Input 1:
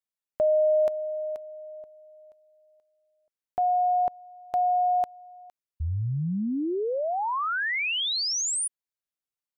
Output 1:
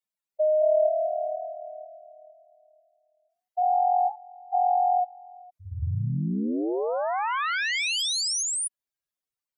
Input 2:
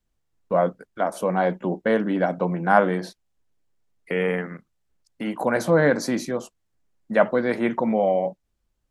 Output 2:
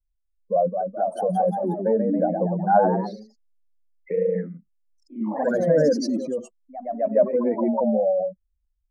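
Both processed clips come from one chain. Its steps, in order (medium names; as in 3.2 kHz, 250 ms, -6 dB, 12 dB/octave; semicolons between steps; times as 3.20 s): spectral contrast enhancement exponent 2.7; ever faster or slower copies 241 ms, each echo +1 st, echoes 3, each echo -6 dB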